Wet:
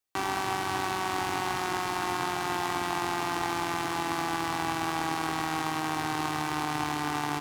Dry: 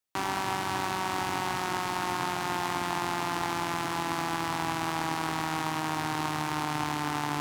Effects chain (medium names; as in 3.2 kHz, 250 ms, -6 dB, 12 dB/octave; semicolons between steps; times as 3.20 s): comb 2.6 ms, depth 32%